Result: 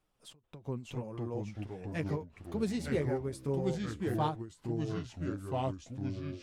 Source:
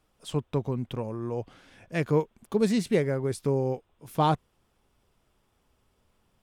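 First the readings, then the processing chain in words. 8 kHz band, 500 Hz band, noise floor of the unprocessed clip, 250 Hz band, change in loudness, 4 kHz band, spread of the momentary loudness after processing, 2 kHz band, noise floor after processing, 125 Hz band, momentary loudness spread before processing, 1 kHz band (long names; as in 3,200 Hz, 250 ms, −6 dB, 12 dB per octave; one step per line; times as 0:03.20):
−7.0 dB, −7.5 dB, −71 dBFS, −5.5 dB, −7.5 dB, −7.0 dB, 9 LU, −6.0 dB, −69 dBFS, −4.5 dB, 9 LU, −7.5 dB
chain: flanger 1.9 Hz, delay 5.1 ms, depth 3.7 ms, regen −29%
delay with pitch and tempo change per echo 542 ms, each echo −3 semitones, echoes 3
every ending faded ahead of time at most 170 dB per second
level −5 dB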